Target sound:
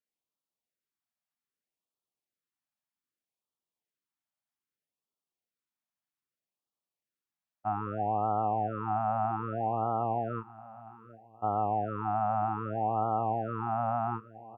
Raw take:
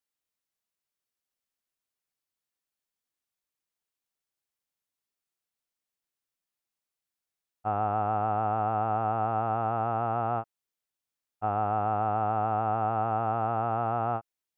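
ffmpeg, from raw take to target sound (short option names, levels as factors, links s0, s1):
-filter_complex "[0:a]highpass=110,highshelf=f=2300:g=-10,asplit=2[s0][s1];[s1]aecho=0:1:759|1518|2277:0.119|0.0475|0.019[s2];[s0][s2]amix=inputs=2:normalize=0,afftfilt=real='re*(1-between(b*sr/1024,390*pow(2000/390,0.5+0.5*sin(2*PI*0.63*pts/sr))/1.41,390*pow(2000/390,0.5+0.5*sin(2*PI*0.63*pts/sr))*1.41))':imag='im*(1-between(b*sr/1024,390*pow(2000/390,0.5+0.5*sin(2*PI*0.63*pts/sr))/1.41,390*pow(2000/390,0.5+0.5*sin(2*PI*0.63*pts/sr))*1.41))':win_size=1024:overlap=0.75"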